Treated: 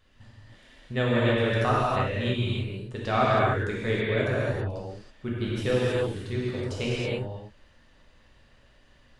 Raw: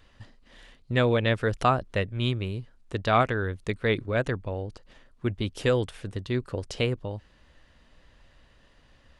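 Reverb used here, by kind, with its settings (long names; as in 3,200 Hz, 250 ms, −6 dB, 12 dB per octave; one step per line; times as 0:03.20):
reverb whose tail is shaped and stops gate 350 ms flat, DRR −7.5 dB
level −7.5 dB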